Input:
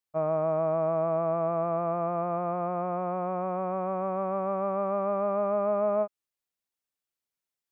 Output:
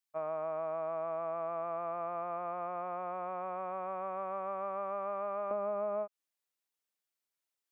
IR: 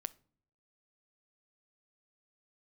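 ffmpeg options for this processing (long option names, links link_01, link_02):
-af "asetnsamples=nb_out_samples=441:pad=0,asendcmd='5.51 highpass f 350',highpass=frequency=1400:poles=1,acompressor=threshold=-32dB:ratio=6"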